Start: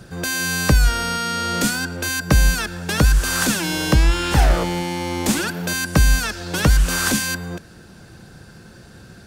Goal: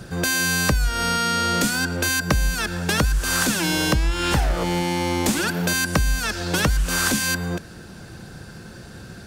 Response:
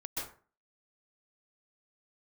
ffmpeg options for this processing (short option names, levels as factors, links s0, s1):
-af "acompressor=threshold=0.0891:ratio=6,volume=1.5"